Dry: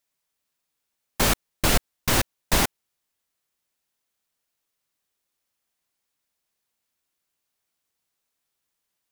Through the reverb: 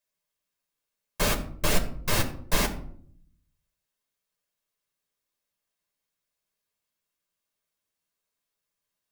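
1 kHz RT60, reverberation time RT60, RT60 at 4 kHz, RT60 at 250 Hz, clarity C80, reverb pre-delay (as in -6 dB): 0.55 s, 0.60 s, 0.35 s, 0.95 s, 15.0 dB, 7 ms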